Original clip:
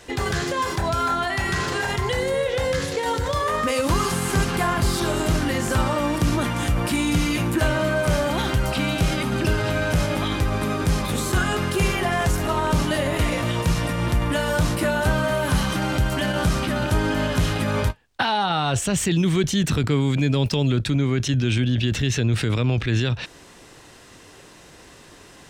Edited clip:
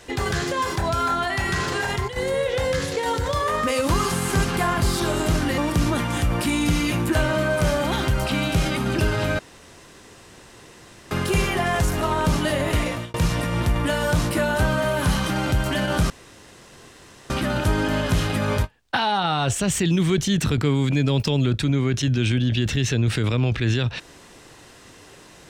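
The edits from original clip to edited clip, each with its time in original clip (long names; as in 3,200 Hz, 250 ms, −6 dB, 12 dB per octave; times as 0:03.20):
0:01.70–0:02.54: duck −10.5 dB, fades 0.38 s logarithmic
0:05.58–0:06.04: remove
0:09.85–0:11.57: fill with room tone
0:13.18–0:13.60: fade out equal-power
0:16.56: splice in room tone 1.20 s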